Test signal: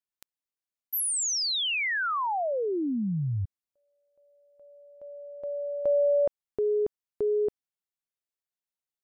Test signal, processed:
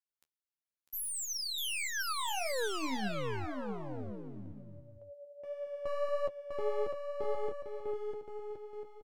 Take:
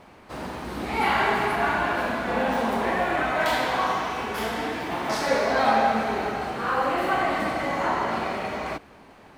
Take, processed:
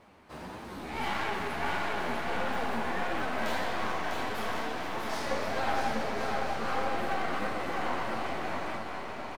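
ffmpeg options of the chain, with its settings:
-af "aeval=exprs='clip(val(0),-1,0.0266)':c=same,flanger=delay=8.6:depth=5:regen=32:speed=1.6:shape=triangular,aecho=1:1:650|1072|1347|1526|1642:0.631|0.398|0.251|0.158|0.1,volume=0.631"

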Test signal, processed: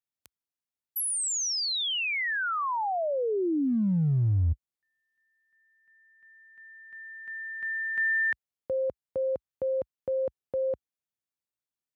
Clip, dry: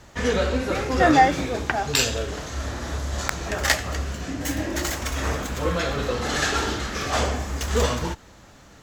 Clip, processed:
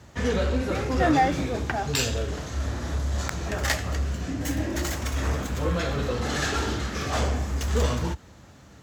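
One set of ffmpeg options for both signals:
-filter_complex "[0:a]highpass=f=60:w=0.5412,highpass=f=60:w=1.3066,lowshelf=f=250:g=8,asplit=2[s0][s1];[s1]volume=8.91,asoftclip=hard,volume=0.112,volume=0.708[s2];[s0][s2]amix=inputs=2:normalize=0,volume=0.376"

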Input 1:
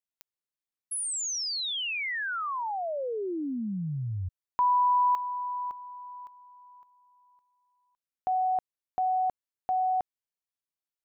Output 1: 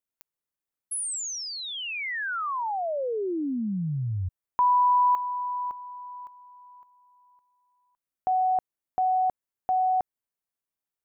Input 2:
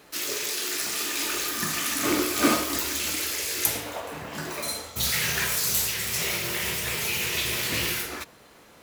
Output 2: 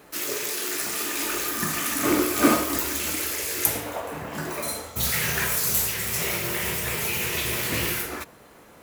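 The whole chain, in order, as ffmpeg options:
-af "equalizer=f=4200:w=0.7:g=-7,volume=1.5"

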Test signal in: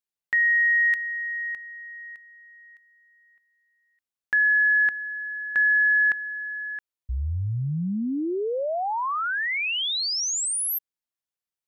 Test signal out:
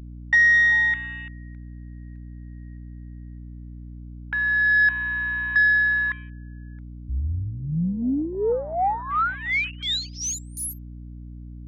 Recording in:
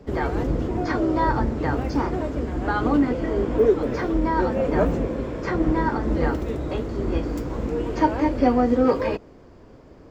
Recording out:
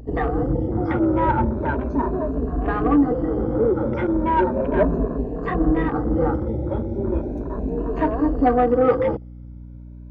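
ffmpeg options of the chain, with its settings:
-af "afftfilt=real='re*pow(10,16/40*sin(2*PI*(1.5*log(max(b,1)*sr/1024/100)/log(2)-(0.36)*(pts-256)/sr)))':imag='im*pow(10,16/40*sin(2*PI*(1.5*log(max(b,1)*sr/1024/100)/log(2)-(0.36)*(pts-256)/sr)))':win_size=1024:overlap=0.75,afwtdn=0.0355,highshelf=f=4200:g=-10.5,aeval=exprs='val(0)+0.0141*(sin(2*PI*60*n/s)+sin(2*PI*2*60*n/s)/2+sin(2*PI*3*60*n/s)/3+sin(2*PI*4*60*n/s)/4+sin(2*PI*5*60*n/s)/5)':c=same,asoftclip=type=tanh:threshold=0.398"

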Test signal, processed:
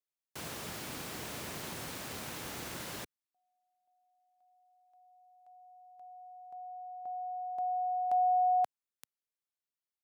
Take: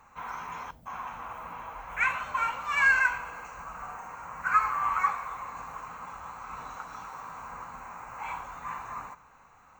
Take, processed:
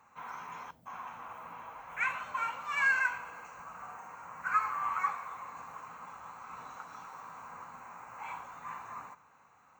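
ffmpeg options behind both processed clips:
-af "highpass=110,volume=0.531"

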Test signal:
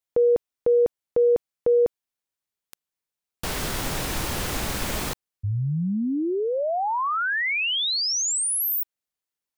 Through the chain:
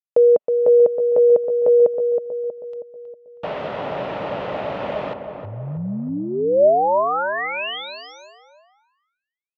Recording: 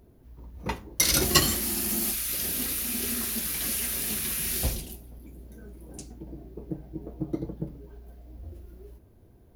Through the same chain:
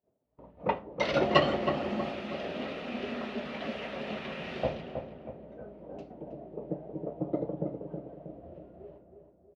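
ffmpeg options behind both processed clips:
-filter_complex "[0:a]highpass=230,equalizer=f=240:t=q:w=4:g=-5,equalizer=f=340:t=q:w=4:g=-8,equalizer=f=600:t=q:w=4:g=9,equalizer=f=1100:t=q:w=4:g=-3,equalizer=f=1600:t=q:w=4:g=-9,equalizer=f=2200:t=q:w=4:g=-7,lowpass=f=2400:w=0.5412,lowpass=f=2400:w=1.3066,agate=range=0.0224:threshold=0.002:ratio=3:release=291:detection=rms,asplit=2[s0][s1];[s1]adelay=319,lowpass=f=1300:p=1,volume=0.501,asplit=2[s2][s3];[s3]adelay=319,lowpass=f=1300:p=1,volume=0.52,asplit=2[s4][s5];[s5]adelay=319,lowpass=f=1300:p=1,volume=0.52,asplit=2[s6][s7];[s7]adelay=319,lowpass=f=1300:p=1,volume=0.52,asplit=2[s8][s9];[s9]adelay=319,lowpass=f=1300:p=1,volume=0.52,asplit=2[s10][s11];[s11]adelay=319,lowpass=f=1300:p=1,volume=0.52[s12];[s0][s2][s4][s6][s8][s10][s12]amix=inputs=7:normalize=0,volume=1.88"

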